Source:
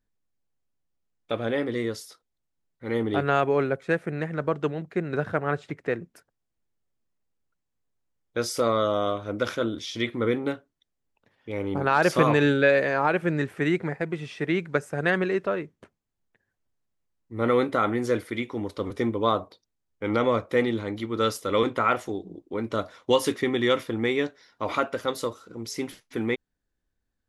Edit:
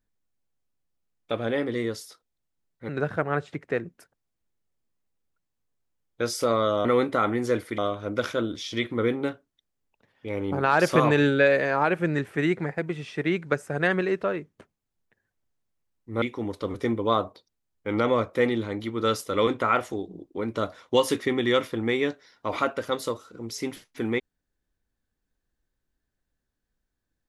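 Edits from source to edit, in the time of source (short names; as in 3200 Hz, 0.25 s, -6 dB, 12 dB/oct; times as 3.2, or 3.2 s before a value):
2.89–5.05 cut
17.45–18.38 move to 9.01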